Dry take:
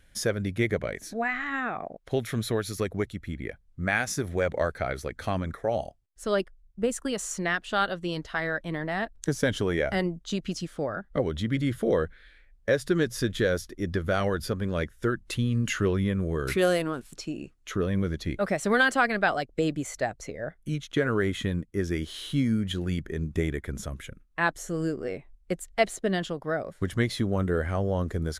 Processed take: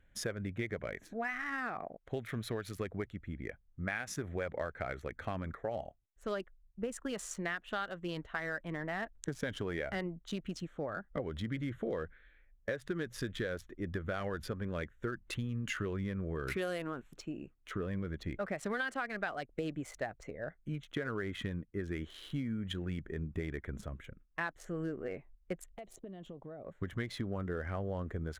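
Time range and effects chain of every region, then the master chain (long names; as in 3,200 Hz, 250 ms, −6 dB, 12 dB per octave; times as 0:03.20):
0:25.71–0:26.66: parametric band 1,600 Hz −12.5 dB 0.97 octaves + downward compressor 16 to 1, threshold −35 dBFS
whole clip: adaptive Wiener filter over 9 samples; dynamic equaliser 1,800 Hz, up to +4 dB, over −43 dBFS, Q 0.74; downward compressor 6 to 1, threshold −26 dBFS; level −7 dB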